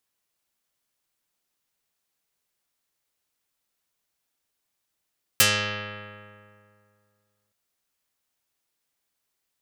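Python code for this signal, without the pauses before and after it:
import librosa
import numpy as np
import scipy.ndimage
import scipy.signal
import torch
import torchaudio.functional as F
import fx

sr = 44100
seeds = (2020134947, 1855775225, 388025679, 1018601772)

y = fx.pluck(sr, length_s=2.12, note=44, decay_s=2.35, pick=0.29, brightness='dark')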